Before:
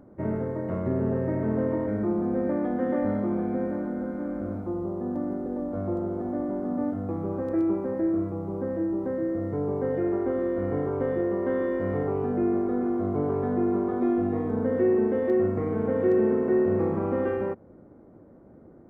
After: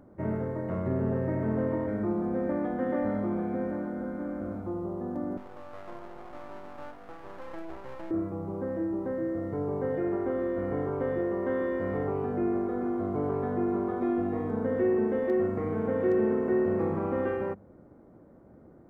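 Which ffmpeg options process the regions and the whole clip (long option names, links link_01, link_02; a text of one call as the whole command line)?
ffmpeg -i in.wav -filter_complex "[0:a]asettb=1/sr,asplit=3[link_01][link_02][link_03];[link_01]atrim=end=5.374[link_04];[link_02]atrim=start=5.37:end=8.11,asetpts=PTS-STARTPTS,afade=type=in:duration=0.004:curve=qsin,afade=type=out:start_time=2.736:duration=0.004:curve=qsin,highpass=600,aeval=exprs='max(val(0),0)':channel_layout=same[link_05];[link_03]atrim=start=8.106[link_06];[link_04][link_05]acrossfade=duration=0.004:curve1=hsin:curve2=qsin[link_07];[link_07][link_06]acrossfade=duration=0.004:curve1=qsin:curve2=hsin,equalizer=frequency=360:width_type=o:width=1.8:gain=-3.5,bandreject=frequency=50:width_type=h:width=6,bandreject=frequency=100:width_type=h:width=6,bandreject=frequency=150:width_type=h:width=6,bandreject=frequency=200:width_type=h:width=6,bandreject=frequency=250:width_type=h:width=6" out.wav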